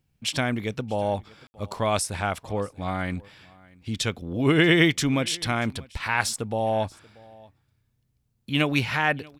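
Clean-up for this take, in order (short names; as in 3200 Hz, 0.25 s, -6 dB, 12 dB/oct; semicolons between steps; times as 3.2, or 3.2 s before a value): room tone fill 1.47–1.54; inverse comb 0.634 s -24 dB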